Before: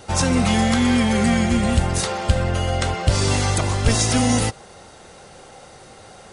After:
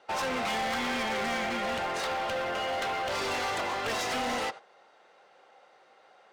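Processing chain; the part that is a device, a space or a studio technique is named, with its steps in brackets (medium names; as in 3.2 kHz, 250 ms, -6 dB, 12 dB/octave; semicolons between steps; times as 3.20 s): walkie-talkie (band-pass 550–2900 Hz; hard clipper -28.5 dBFS, distortion -8 dB; gate -41 dBFS, range -12 dB)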